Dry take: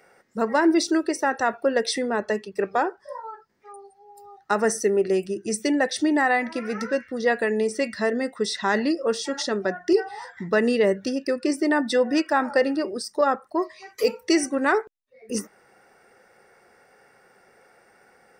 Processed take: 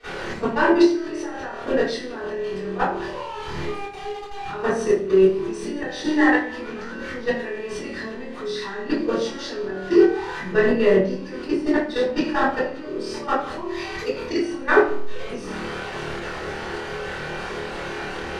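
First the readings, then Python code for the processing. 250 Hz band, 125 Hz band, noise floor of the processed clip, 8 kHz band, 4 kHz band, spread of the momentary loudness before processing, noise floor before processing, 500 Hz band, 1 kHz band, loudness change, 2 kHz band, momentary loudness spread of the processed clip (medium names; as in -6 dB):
+1.5 dB, +6.5 dB, -34 dBFS, -8.5 dB, -1.0 dB, 8 LU, -59 dBFS, +2.0 dB, 0.0 dB, 0.0 dB, +1.5 dB, 14 LU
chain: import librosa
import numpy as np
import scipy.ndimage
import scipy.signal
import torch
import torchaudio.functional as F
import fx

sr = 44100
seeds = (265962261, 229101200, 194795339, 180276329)

p1 = x + 0.5 * 10.0 ** (-27.5 / 20.0) * np.sign(x)
p2 = scipy.signal.sosfilt(scipy.signal.butter(2, 3900.0, 'lowpass', fs=sr, output='sos'), p1)
p3 = p2 + fx.room_flutter(p2, sr, wall_m=4.5, rt60_s=0.63, dry=0)
p4 = fx.level_steps(p3, sr, step_db=16)
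p5 = fx.room_shoebox(p4, sr, seeds[0], volume_m3=33.0, walls='mixed', distance_m=2.8)
p6 = fx.hpss(p5, sr, part='percussive', gain_db=5)
y = p6 * librosa.db_to_amplitude(-14.5)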